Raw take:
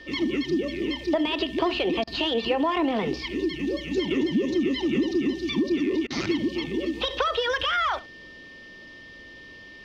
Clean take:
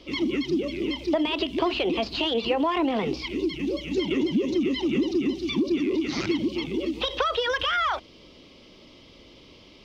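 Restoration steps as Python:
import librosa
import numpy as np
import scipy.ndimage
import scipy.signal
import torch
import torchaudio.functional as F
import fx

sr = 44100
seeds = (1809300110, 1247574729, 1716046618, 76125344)

y = fx.notch(x, sr, hz=1800.0, q=30.0)
y = fx.fix_interpolate(y, sr, at_s=(2.04, 6.07), length_ms=32.0)
y = fx.fix_echo_inverse(y, sr, delay_ms=70, level_db=-19.0)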